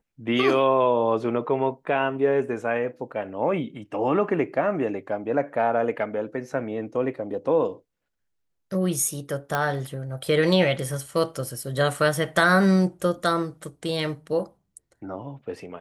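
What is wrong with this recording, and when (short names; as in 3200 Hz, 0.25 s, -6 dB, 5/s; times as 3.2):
9.55 pop -11 dBFS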